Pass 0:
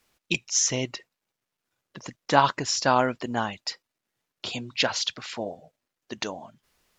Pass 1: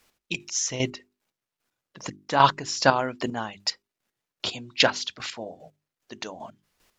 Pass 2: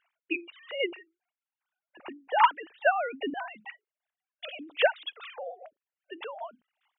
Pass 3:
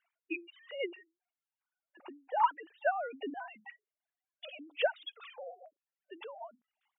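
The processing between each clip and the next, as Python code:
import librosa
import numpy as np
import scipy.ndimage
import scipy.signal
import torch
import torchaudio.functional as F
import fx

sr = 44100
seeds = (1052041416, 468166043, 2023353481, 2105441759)

y1 = fx.chopper(x, sr, hz=2.5, depth_pct=65, duty_pct=25)
y1 = fx.hum_notches(y1, sr, base_hz=50, count=8)
y1 = y1 * 10.0 ** (5.0 / 20.0)
y2 = fx.sine_speech(y1, sr)
y2 = fx.rider(y2, sr, range_db=4, speed_s=2.0)
y2 = y2 * 10.0 ** (-6.0 / 20.0)
y3 = fx.spec_expand(y2, sr, power=1.7)
y3 = y3 * 10.0 ** (-6.5 / 20.0)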